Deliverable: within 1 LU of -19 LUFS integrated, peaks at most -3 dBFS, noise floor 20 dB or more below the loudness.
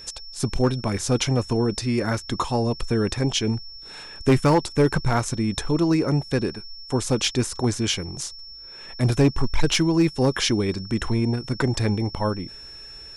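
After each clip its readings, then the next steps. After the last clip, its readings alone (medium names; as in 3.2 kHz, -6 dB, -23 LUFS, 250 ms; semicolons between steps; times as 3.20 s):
clipped samples 0.5%; clipping level -11.5 dBFS; steady tone 5.4 kHz; tone level -39 dBFS; loudness -23.5 LUFS; peak level -11.5 dBFS; loudness target -19.0 LUFS
-> clip repair -11.5 dBFS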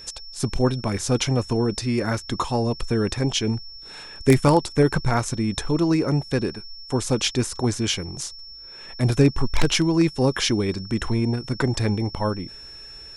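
clipped samples 0.0%; steady tone 5.4 kHz; tone level -39 dBFS
-> band-stop 5.4 kHz, Q 30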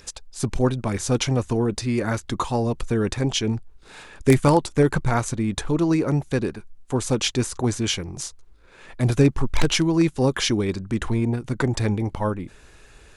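steady tone not found; loudness -23.0 LUFS; peak level -2.5 dBFS; loudness target -19.0 LUFS
-> trim +4 dB; peak limiter -3 dBFS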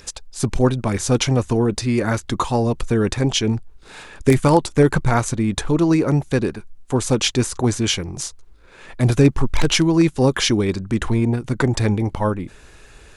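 loudness -19.5 LUFS; peak level -3.0 dBFS; noise floor -46 dBFS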